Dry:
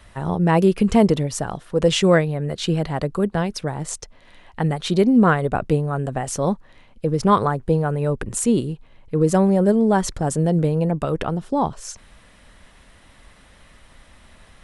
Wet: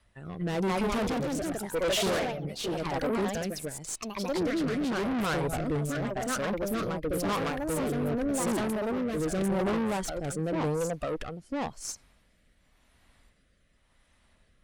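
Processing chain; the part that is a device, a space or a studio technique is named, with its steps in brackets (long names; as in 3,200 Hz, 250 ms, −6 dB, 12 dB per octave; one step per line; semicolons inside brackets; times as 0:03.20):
noise reduction from a noise print of the clip's start 13 dB
delay with pitch and tempo change per echo 256 ms, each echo +2 semitones, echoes 3
overdriven rotary cabinet (tube saturation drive 25 dB, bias 0.45; rotating-speaker cabinet horn 0.9 Hz)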